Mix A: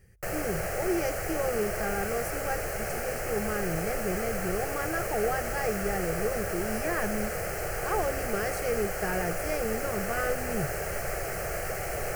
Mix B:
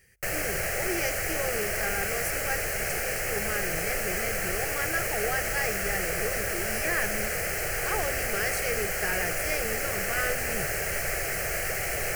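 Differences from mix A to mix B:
speech: add low-shelf EQ 300 Hz −10.5 dB
master: add high shelf with overshoot 1,500 Hz +6.5 dB, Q 1.5

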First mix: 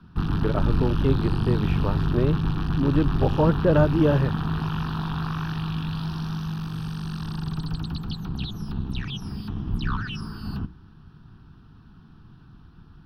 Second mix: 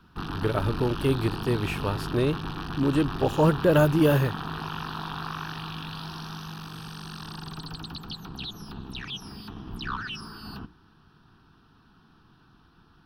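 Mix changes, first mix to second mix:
speech: remove resonant band-pass 750 Hz, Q 0.59
master: add bass and treble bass −13 dB, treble +3 dB

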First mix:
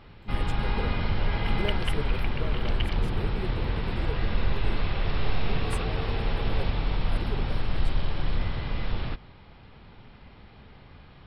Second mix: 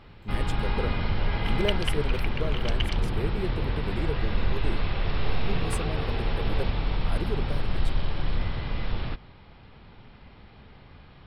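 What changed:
speech +5.5 dB
second sound: remove high-frequency loss of the air 210 metres

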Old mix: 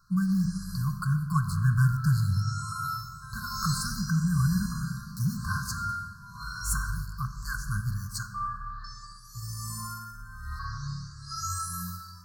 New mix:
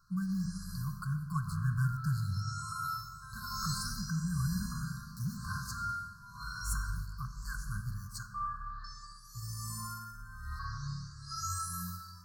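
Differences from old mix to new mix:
speech −8.5 dB
background −4.0 dB

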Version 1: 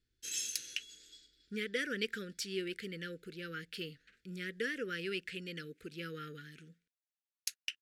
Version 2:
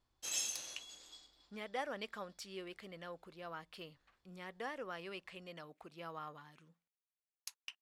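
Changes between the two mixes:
speech −10.0 dB
master: remove elliptic band-stop filter 460–1,500 Hz, stop band 40 dB

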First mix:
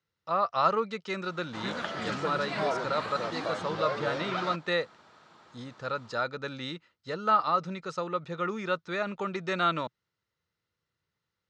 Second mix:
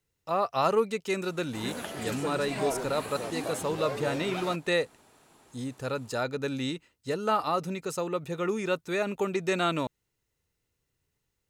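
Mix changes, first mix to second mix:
background −4.5 dB
master: remove loudspeaker in its box 120–5,100 Hz, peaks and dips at 130 Hz −4 dB, 270 Hz −9 dB, 410 Hz −7 dB, 750 Hz −4 dB, 1,300 Hz +6 dB, 2,600 Hz −5 dB

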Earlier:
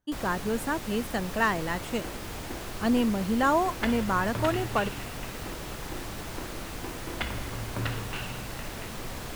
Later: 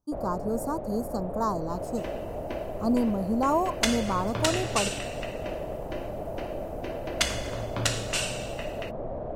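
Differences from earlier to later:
speech: add Chebyshev band-stop filter 1,200–4,600 Hz, order 3
first sound: add low-pass with resonance 620 Hz, resonance Q 5.4
second sound: remove high-frequency loss of the air 470 metres

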